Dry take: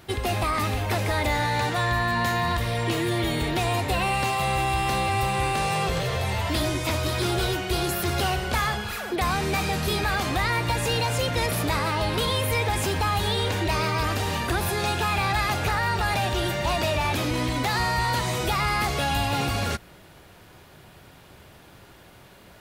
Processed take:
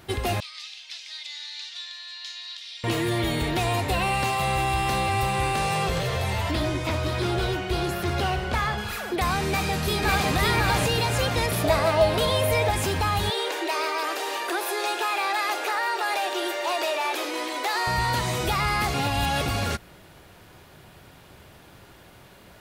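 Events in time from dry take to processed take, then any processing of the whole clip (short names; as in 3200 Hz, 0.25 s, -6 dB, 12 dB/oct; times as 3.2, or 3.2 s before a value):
0.4–2.84 Butterworth band-pass 4300 Hz, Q 1.5
6.51–8.78 LPF 3300 Hz 6 dB/oct
9.47–10.31 echo throw 0.55 s, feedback 45%, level -0.5 dB
11.64–12.71 bell 650 Hz +14.5 dB 0.27 oct
13.3–17.87 elliptic high-pass 340 Hz, stop band 60 dB
18.94–19.46 reverse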